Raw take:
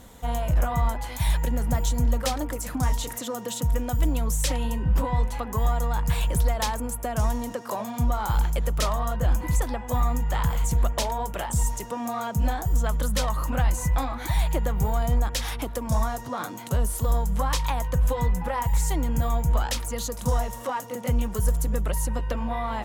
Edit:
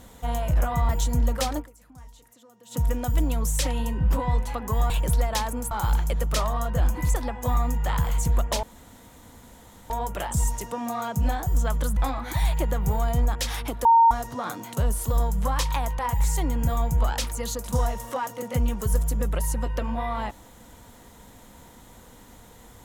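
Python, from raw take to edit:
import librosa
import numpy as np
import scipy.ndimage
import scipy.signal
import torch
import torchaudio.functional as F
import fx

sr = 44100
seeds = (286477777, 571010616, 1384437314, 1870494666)

y = fx.edit(x, sr, fx.cut(start_s=0.89, length_s=0.85),
    fx.fade_down_up(start_s=2.44, length_s=1.17, db=-22.5, fade_s=0.34, curve='exp'),
    fx.cut(start_s=5.75, length_s=0.42),
    fx.cut(start_s=6.98, length_s=1.19),
    fx.insert_room_tone(at_s=11.09, length_s=1.27),
    fx.cut(start_s=13.16, length_s=0.75),
    fx.bleep(start_s=15.79, length_s=0.26, hz=919.0, db=-12.0),
    fx.cut(start_s=17.93, length_s=0.59), tone=tone)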